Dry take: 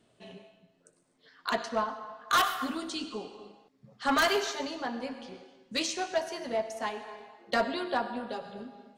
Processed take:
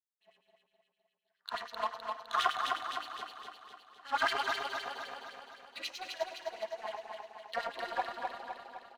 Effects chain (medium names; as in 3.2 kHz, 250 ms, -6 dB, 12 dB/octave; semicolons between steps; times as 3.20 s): expander -54 dBFS; Schroeder reverb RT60 0.55 s, combs from 32 ms, DRR -3 dB; LFO band-pass sine 9.6 Hz 810–3900 Hz; power-law waveshaper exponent 1.4; on a send: feedback delay 256 ms, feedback 56%, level -4 dB